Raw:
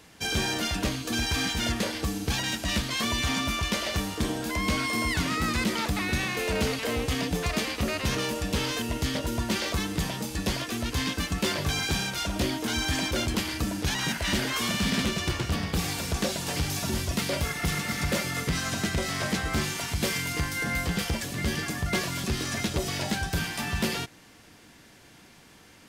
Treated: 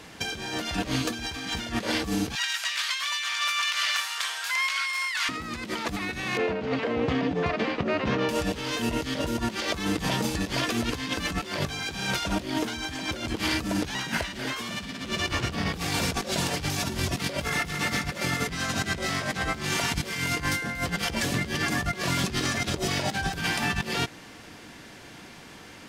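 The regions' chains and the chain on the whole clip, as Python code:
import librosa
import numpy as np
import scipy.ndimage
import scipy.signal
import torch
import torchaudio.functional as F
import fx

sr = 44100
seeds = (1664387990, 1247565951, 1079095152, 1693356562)

y = fx.chain(x, sr, fx.highpass(hz=1200.0, slope=24),
    fx.overload_stage(gain_db=21.0),
    fx.doppler_dist(depth_ms=0.24), at=(2.35, 5.29))
y = fx.chain(y, sr, fx.highpass(hz=130.0, slope=12),
    fx.spacing_loss(db_at_10k=32), at=(6.37, 8.29))
y = fx.low_shelf(y, sr, hz=140.0, db=-4.5)
y = fx.over_compress(y, sr, threshold_db=-33.0, ratio=-0.5)
y = fx.high_shelf(y, sr, hz=7500.0, db=-9.0)
y = y * librosa.db_to_amplitude(5.5)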